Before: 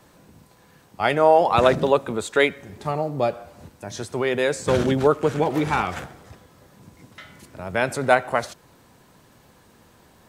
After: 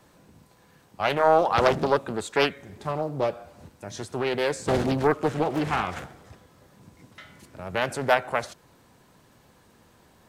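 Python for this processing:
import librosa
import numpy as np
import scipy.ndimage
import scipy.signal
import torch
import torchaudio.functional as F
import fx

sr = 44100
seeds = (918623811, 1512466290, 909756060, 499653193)

y = fx.doppler_dist(x, sr, depth_ms=0.81)
y = F.gain(torch.from_numpy(y), -3.5).numpy()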